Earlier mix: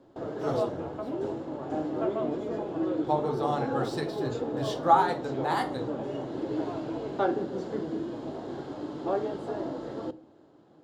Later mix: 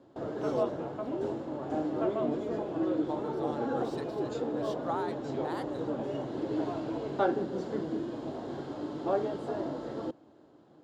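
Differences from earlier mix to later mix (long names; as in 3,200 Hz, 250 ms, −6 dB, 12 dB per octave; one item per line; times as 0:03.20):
speech −6.0 dB
reverb: off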